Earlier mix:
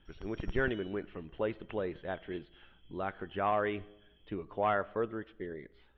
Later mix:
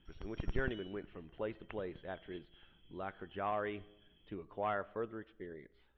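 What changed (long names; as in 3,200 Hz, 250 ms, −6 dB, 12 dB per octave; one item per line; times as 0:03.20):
speech −6.5 dB
background: add high-frequency loss of the air 50 metres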